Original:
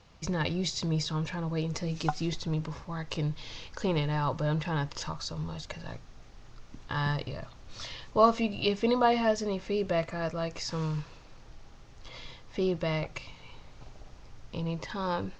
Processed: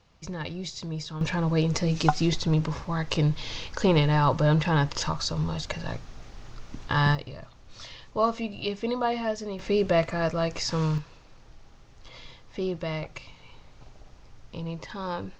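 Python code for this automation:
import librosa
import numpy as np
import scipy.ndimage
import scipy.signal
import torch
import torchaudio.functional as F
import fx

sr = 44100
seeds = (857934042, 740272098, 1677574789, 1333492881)

y = fx.gain(x, sr, db=fx.steps((0.0, -4.0), (1.21, 7.5), (7.15, -2.5), (9.59, 6.0), (10.98, -1.0)))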